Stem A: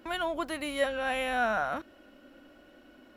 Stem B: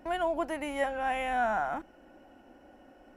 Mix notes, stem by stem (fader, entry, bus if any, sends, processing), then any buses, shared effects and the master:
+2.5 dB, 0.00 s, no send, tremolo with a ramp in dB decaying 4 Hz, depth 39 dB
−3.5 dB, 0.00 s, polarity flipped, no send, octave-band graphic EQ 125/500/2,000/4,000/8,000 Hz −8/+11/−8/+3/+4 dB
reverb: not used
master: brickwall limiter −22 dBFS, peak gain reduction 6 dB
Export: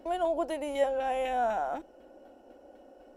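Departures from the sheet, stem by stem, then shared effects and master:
stem A +2.5 dB → −4.5 dB
master: missing brickwall limiter −22 dBFS, peak gain reduction 6 dB

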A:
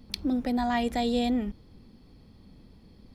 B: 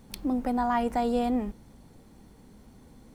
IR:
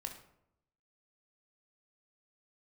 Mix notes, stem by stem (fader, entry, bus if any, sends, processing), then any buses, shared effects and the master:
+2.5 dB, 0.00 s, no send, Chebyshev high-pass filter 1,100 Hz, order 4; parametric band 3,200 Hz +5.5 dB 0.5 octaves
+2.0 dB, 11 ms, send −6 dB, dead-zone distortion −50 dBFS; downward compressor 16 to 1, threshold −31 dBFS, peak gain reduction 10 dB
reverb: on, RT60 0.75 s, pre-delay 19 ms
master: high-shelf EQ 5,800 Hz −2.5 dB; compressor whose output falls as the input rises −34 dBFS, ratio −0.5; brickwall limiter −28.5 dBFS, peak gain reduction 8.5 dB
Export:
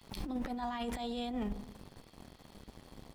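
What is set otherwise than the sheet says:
stem A +2.5 dB → −4.0 dB
stem B: polarity flipped

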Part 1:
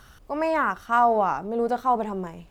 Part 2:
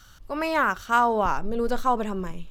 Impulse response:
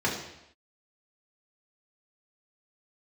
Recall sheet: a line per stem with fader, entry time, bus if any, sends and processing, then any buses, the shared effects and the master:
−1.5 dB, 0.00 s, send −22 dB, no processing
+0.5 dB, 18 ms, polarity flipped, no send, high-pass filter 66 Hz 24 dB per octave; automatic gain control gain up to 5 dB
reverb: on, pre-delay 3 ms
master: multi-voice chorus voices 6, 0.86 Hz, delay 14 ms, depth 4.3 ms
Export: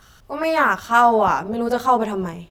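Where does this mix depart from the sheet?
stem 2: polarity flipped
master: missing multi-voice chorus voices 6, 0.86 Hz, delay 14 ms, depth 4.3 ms

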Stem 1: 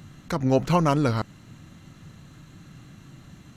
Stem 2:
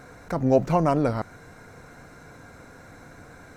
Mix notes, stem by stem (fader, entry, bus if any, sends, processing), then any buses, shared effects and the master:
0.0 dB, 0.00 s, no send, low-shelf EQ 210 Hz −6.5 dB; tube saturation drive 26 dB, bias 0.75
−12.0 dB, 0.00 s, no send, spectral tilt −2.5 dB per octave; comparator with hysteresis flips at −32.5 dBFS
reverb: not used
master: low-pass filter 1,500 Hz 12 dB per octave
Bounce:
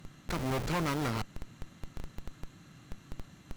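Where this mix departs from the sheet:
stem 2: polarity flipped
master: missing low-pass filter 1,500 Hz 12 dB per octave

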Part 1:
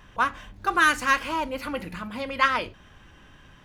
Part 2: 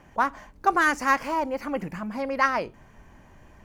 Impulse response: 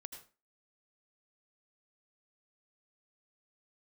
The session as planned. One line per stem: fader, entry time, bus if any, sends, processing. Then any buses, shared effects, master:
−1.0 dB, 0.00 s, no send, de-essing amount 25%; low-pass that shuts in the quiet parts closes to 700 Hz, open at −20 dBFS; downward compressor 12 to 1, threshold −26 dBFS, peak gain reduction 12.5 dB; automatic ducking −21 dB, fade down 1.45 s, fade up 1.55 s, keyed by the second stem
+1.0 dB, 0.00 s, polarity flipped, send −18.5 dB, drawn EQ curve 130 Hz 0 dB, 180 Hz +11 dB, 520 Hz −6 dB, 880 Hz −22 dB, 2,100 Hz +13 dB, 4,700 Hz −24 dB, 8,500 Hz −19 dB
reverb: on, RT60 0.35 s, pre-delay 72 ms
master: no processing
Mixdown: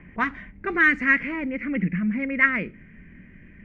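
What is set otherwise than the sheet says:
stem 1: missing downward compressor 12 to 1, threshold −26 dBFS, peak gain reduction 12.5 dB
master: extra high-frequency loss of the air 120 metres

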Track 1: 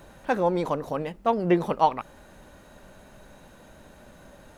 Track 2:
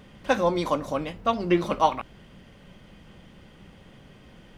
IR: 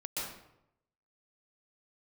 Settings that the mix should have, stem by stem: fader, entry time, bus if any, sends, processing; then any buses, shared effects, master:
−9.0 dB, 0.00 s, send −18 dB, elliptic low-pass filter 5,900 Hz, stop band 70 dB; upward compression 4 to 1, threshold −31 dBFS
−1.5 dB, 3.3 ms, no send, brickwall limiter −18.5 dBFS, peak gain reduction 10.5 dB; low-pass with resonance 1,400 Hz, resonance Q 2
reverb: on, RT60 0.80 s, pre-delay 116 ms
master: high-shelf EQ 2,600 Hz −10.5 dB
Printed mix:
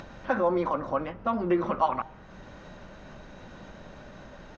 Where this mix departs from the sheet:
stem 2: polarity flipped
master: missing high-shelf EQ 2,600 Hz −10.5 dB

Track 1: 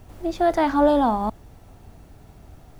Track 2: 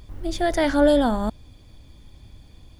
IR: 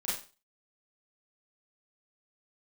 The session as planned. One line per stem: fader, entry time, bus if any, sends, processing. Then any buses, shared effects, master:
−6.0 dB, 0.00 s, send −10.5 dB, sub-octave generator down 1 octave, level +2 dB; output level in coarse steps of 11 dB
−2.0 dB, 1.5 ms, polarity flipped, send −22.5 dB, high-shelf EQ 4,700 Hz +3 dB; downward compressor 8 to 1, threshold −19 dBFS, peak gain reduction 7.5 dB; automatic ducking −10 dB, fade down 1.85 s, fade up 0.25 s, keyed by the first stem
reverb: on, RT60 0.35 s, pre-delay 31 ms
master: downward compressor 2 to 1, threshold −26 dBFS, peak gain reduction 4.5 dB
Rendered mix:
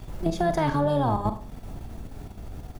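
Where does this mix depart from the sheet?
stem 1 −6.0 dB → +5.5 dB
stem 2: polarity flipped

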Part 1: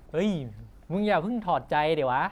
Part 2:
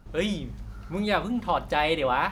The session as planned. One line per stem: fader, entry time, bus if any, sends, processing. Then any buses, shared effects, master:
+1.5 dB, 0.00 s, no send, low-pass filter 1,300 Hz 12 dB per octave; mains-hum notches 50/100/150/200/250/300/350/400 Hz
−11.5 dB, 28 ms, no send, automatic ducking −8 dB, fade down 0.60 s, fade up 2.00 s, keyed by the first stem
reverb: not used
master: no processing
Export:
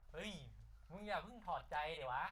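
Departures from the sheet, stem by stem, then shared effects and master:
stem 1 +1.5 dB → −5.5 dB
master: extra guitar amp tone stack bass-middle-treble 10-0-10

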